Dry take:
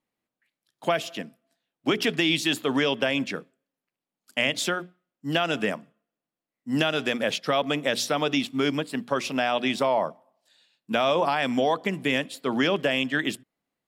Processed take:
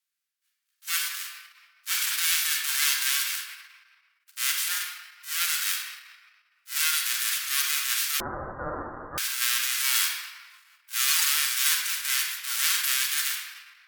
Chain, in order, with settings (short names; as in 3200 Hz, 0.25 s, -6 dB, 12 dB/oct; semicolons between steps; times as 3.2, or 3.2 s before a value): spectral whitening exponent 0.1; shoebox room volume 2900 m³, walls mixed, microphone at 1.6 m; transient shaper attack -11 dB, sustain +4 dB; steep high-pass 1300 Hz 36 dB/oct; 8.2–9.18 inverted band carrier 2800 Hz; Opus 96 kbps 48000 Hz